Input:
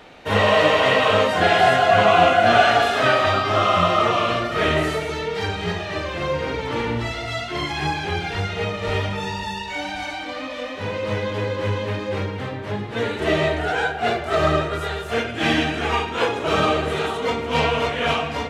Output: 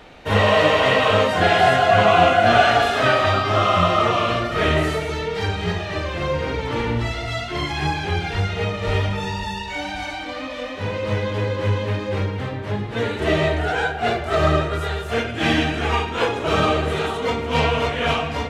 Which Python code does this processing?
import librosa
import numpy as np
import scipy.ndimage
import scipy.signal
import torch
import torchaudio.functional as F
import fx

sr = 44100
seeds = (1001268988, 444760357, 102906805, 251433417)

y = fx.low_shelf(x, sr, hz=87.0, db=10.0)